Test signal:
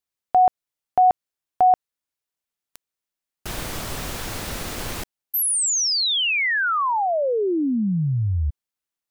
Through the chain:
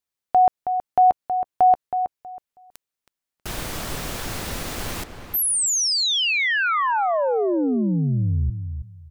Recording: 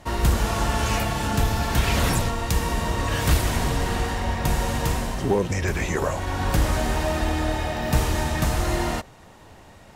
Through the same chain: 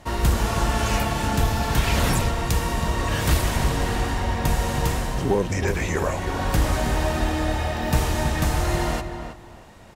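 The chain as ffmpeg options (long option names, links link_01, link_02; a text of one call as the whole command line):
ffmpeg -i in.wav -filter_complex "[0:a]asplit=2[link_01][link_02];[link_02]adelay=321,lowpass=frequency=2300:poles=1,volume=-8dB,asplit=2[link_03][link_04];[link_04]adelay=321,lowpass=frequency=2300:poles=1,volume=0.22,asplit=2[link_05][link_06];[link_06]adelay=321,lowpass=frequency=2300:poles=1,volume=0.22[link_07];[link_01][link_03][link_05][link_07]amix=inputs=4:normalize=0" out.wav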